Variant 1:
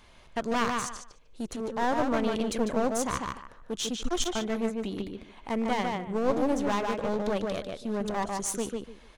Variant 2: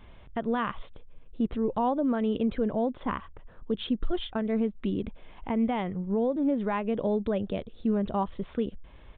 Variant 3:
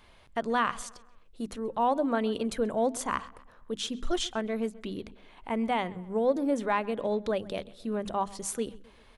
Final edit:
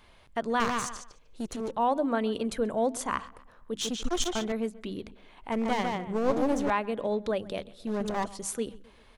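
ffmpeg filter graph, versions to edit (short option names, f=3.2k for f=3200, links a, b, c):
-filter_complex "[0:a]asplit=4[a][b][c][d];[2:a]asplit=5[e][f][g][h][i];[e]atrim=end=0.602[j];[a]atrim=start=0.598:end=1.712[k];[f]atrim=start=1.708:end=3.812[l];[b]atrim=start=3.808:end=4.522[m];[g]atrim=start=4.518:end=5.522[n];[c]atrim=start=5.518:end=6.702[o];[h]atrim=start=6.698:end=7.872[p];[d]atrim=start=7.868:end=8.272[q];[i]atrim=start=8.268[r];[j][k]acrossfade=d=0.004:c1=hsin:c2=hsin[s];[s][l]acrossfade=d=0.004:c1=hsin:c2=hsin[t];[t][m]acrossfade=d=0.004:c1=hsin:c2=hsin[u];[u][n]acrossfade=d=0.004:c1=hsin:c2=hsin[v];[v][o]acrossfade=d=0.004:c1=hsin:c2=hsin[w];[w][p]acrossfade=d=0.004:c1=hsin:c2=hsin[x];[x][q]acrossfade=d=0.004:c1=hsin:c2=hsin[y];[y][r]acrossfade=d=0.004:c1=hsin:c2=hsin"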